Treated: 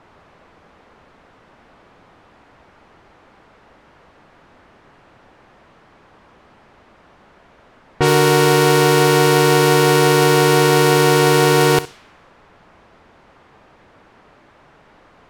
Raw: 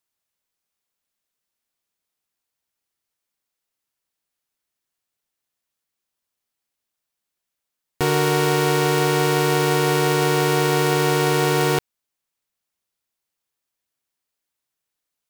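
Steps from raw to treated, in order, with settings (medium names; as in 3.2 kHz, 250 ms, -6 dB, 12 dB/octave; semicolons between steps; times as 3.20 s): jump at every zero crossing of -37 dBFS; flutter echo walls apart 11 m, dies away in 0.24 s; level-controlled noise filter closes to 1.1 kHz, open at -15.5 dBFS; trim +5.5 dB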